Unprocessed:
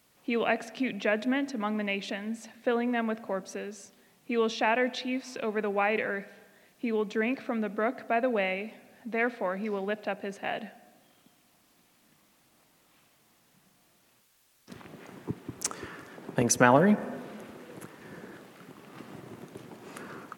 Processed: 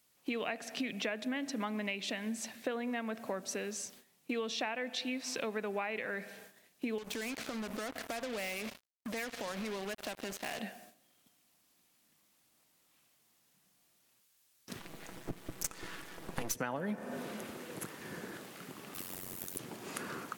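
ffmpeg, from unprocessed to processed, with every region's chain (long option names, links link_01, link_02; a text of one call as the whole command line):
ffmpeg -i in.wav -filter_complex "[0:a]asettb=1/sr,asplit=3[link_01][link_02][link_03];[link_01]atrim=end=6.984[link_04];[link_02]atrim=start=6.98:end=10.59,asetpts=PTS-STARTPTS,afade=type=in:duration=0.004:curve=qsin,afade=type=out:start_time=3.606:duration=0.004:curve=qsin,highpass=frequency=75:width=0.5412,highpass=frequency=75:width=1.3066,acompressor=threshold=-37dB:ratio=5:attack=3.2:release=140:knee=1:detection=peak,acrusher=bits=6:mix=0:aa=0.5[link_05];[link_03]atrim=start=10.586[link_06];[link_04][link_05]acrossfade=duration=0.004:curve1=hsin:curve2=qsin[link_07];[link_07][link_06]acrossfade=duration=0.004:curve1=qsin:curve2=hsin,asettb=1/sr,asplit=3[link_08][link_09][link_10];[link_08]atrim=end=14.794[link_11];[link_09]atrim=start=14.79:end=16.55,asetpts=PTS-STARTPTS,afade=type=in:duration=0.004:curve=qsin,afade=type=out:start_time=1.756:duration=0.004:curve=qsin,aeval=exprs='max(val(0),0)':channel_layout=same,aecho=1:1:6.1:0.34,atrim=end_sample=77616[link_12];[link_10]atrim=start=16.546[link_13];[link_11][link_12]acrossfade=duration=0.004:curve1=hsin:curve2=qsin[link_14];[link_14][link_13]acrossfade=duration=0.004:curve1=qsin:curve2=hsin,asettb=1/sr,asplit=3[link_15][link_16][link_17];[link_15]atrim=end=18.944[link_18];[link_16]atrim=start=18.94:end=19.59,asetpts=PTS-STARTPTS,afade=type=in:duration=0.004:curve=qsin,afade=type=out:start_time=0.646:duration=0.004:curve=qsin,aemphasis=mode=production:type=75fm,acrusher=bits=8:mode=log:mix=0:aa=0.000001,tremolo=f=92:d=0.974[link_19];[link_17]atrim=start=19.586[link_20];[link_18][link_19]acrossfade=duration=0.004:curve1=hsin:curve2=qsin[link_21];[link_21][link_20]acrossfade=duration=0.004:curve1=qsin:curve2=hsin,highshelf=frequency=2800:gain=9,agate=range=-12dB:threshold=-54dB:ratio=16:detection=peak,acompressor=threshold=-33dB:ratio=10" out.wav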